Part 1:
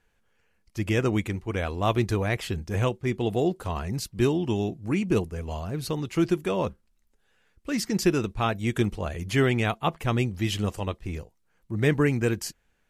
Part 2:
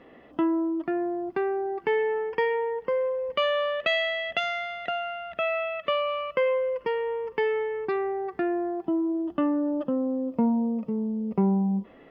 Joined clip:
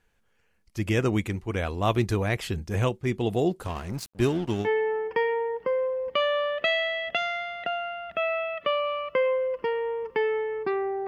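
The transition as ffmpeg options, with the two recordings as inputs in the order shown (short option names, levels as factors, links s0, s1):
-filter_complex "[0:a]asettb=1/sr,asplit=3[s0][s1][s2];[s0]atrim=end=3.674[s3];[s1]atrim=start=3.67:end=4.69,asetpts=PTS-STARTPTS,afade=t=in:d=0.004:c=qsin,afade=t=out:st=1.016:d=0.004:c=qsin,aeval=exprs='sgn(val(0))*max(abs(val(0))-0.0126,0)':c=same[s4];[s2]atrim=start=4.686[s5];[s3][s4]acrossfade=d=0.004:c1=hsin:c2=qsin[s6];[s6][s5]acrossfade=d=0.004:c1=qsin:c2=hsin,apad=whole_dur=11.07,atrim=end=11.07,atrim=end=4.69,asetpts=PTS-STARTPTS[s7];[1:a]atrim=start=1.83:end=8.29,asetpts=PTS-STARTPTS[s8];[s7][s8]acrossfade=d=0.08:c1=tri:c2=tri"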